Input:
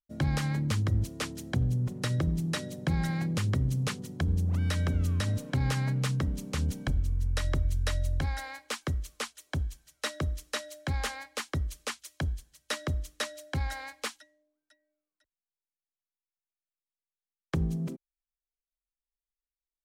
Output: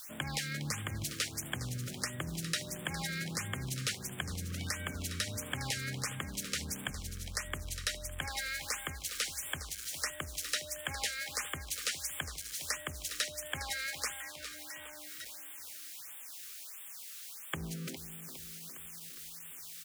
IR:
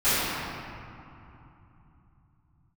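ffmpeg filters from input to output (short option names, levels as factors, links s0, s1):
-filter_complex "[0:a]aeval=exprs='val(0)+0.5*0.00668*sgn(val(0))':c=same,highpass=f=130:p=1,tiltshelf=f=970:g=-8.5,acompressor=threshold=0.0224:ratio=3,asplit=2[s0][s1];[s1]aecho=0:1:409|818|1227|1636|2045|2454|2863:0.282|0.166|0.0981|0.0579|0.0342|0.0201|0.0119[s2];[s0][s2]amix=inputs=2:normalize=0,afftfilt=real='re*(1-between(b*sr/1024,770*pow(5300/770,0.5+0.5*sin(2*PI*1.5*pts/sr))/1.41,770*pow(5300/770,0.5+0.5*sin(2*PI*1.5*pts/sr))*1.41))':imag='im*(1-between(b*sr/1024,770*pow(5300/770,0.5+0.5*sin(2*PI*1.5*pts/sr))/1.41,770*pow(5300/770,0.5+0.5*sin(2*PI*1.5*pts/sr))*1.41))':win_size=1024:overlap=0.75"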